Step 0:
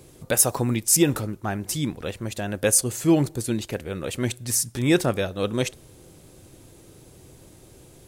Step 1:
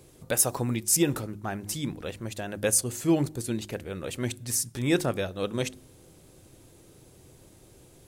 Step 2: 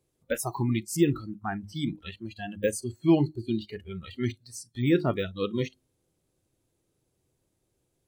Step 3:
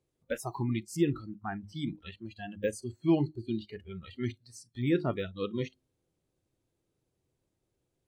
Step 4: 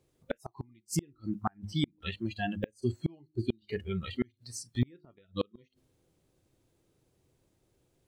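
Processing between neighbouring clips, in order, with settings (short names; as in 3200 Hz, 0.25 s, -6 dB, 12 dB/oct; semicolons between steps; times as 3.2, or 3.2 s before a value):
de-hum 51.53 Hz, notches 7; gain -4.5 dB
de-esser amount 100%; spectral noise reduction 24 dB; gain +2.5 dB
high shelf 8600 Hz -11 dB; gain -4.5 dB
flipped gate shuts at -25 dBFS, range -37 dB; gain +8.5 dB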